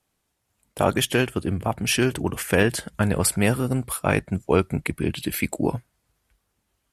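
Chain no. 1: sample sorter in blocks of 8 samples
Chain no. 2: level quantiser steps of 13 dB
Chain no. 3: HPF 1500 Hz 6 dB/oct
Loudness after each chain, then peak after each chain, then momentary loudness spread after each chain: -23.5, -29.5, -29.0 LUFS; -5.0, -10.5, -9.0 dBFS; 6, 6, 12 LU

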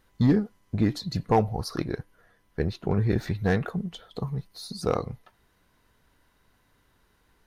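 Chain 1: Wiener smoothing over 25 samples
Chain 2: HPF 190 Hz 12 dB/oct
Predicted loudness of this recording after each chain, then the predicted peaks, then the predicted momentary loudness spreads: -28.0, -30.0 LUFS; -12.5, -9.0 dBFS; 14, 14 LU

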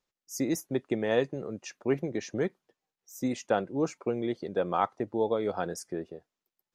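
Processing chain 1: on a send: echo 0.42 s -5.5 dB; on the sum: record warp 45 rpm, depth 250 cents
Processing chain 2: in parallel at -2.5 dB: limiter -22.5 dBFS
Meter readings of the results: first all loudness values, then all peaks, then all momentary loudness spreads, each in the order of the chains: -31.0, -28.0 LUFS; -12.5, -11.0 dBFS; 11, 8 LU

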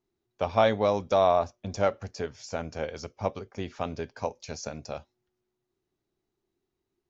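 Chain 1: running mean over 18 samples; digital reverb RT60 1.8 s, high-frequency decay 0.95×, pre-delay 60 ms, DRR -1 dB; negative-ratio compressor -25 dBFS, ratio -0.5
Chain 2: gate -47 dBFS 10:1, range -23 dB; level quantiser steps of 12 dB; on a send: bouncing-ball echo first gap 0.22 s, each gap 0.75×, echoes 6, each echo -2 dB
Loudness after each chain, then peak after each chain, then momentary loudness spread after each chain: -29.5, -29.0 LUFS; -11.0, -10.5 dBFS; 8, 17 LU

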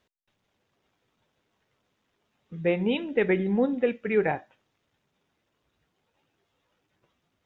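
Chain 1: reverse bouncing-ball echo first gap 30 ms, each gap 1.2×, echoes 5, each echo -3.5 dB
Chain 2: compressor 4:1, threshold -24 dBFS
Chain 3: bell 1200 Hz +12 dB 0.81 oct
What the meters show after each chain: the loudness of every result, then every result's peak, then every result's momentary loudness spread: -24.0, -30.0, -25.0 LUFS; -9.0, -15.0, -8.5 dBFS; 8, 6, 6 LU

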